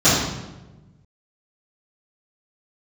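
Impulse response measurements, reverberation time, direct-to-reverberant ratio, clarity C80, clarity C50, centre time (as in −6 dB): 1.1 s, −15.0 dB, 3.0 dB, −0.5 dB, 73 ms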